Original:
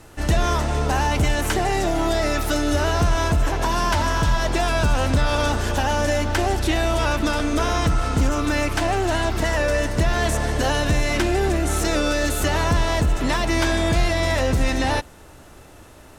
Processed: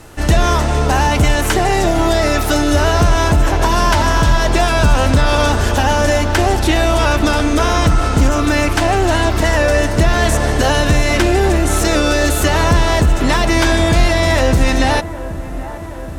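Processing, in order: dark delay 0.775 s, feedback 70%, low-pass 1400 Hz, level -14.5 dB; gain +7 dB

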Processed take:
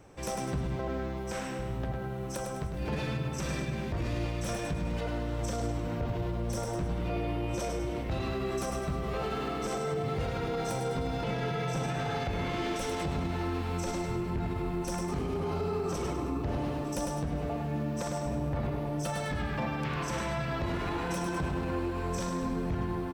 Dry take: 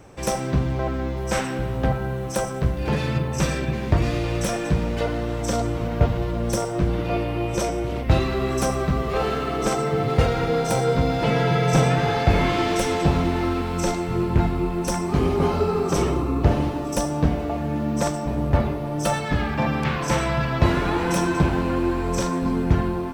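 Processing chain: 1.16–2.74 compressor 4:1, threshold -24 dBFS, peak gain reduction 8.5 dB; on a send: feedback echo 0.102 s, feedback 43%, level -7 dB; on the sum: limiter -16 dBFS, peak gain reduction 10.5 dB; gain -8 dB

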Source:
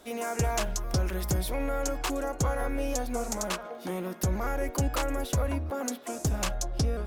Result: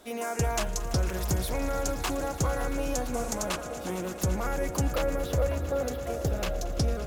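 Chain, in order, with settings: 4.9–6.67 ten-band EQ 250 Hz -6 dB, 500 Hz +8 dB, 1000 Hz -6 dB, 8000 Hz -11 dB; swelling echo 0.113 s, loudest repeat 5, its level -17 dB

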